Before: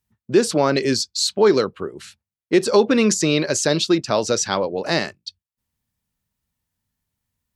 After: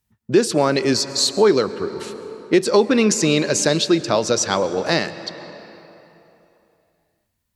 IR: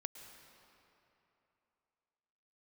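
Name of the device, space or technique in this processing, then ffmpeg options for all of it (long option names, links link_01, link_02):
ducked reverb: -filter_complex "[0:a]asplit=3[link_01][link_02][link_03];[1:a]atrim=start_sample=2205[link_04];[link_02][link_04]afir=irnorm=-1:irlink=0[link_05];[link_03]apad=whole_len=333362[link_06];[link_05][link_06]sidechaincompress=threshold=-17dB:ratio=8:attack=16:release=920,volume=4.5dB[link_07];[link_01][link_07]amix=inputs=2:normalize=0,volume=-3dB"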